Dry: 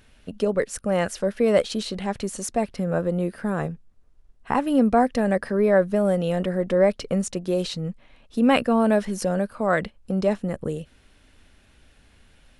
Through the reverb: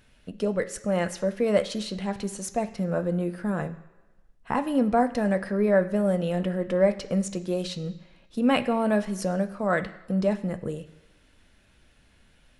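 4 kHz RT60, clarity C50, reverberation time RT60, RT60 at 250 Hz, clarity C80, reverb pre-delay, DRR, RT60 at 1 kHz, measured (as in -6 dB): 1.1 s, 14.0 dB, 1.2 s, 1.1 s, 16.5 dB, 3 ms, 7.5 dB, 1.2 s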